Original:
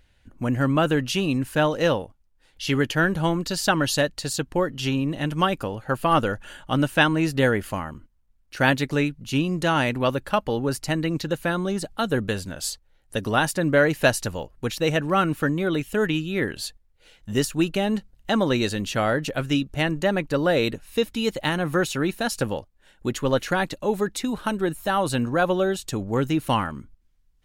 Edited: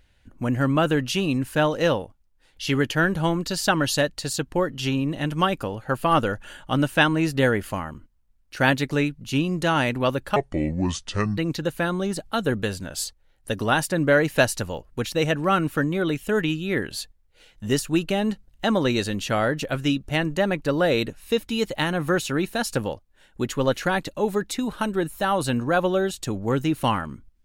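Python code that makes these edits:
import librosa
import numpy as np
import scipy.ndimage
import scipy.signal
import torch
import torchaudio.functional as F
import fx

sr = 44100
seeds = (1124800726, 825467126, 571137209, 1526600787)

y = fx.edit(x, sr, fx.speed_span(start_s=10.36, length_s=0.67, speed=0.66), tone=tone)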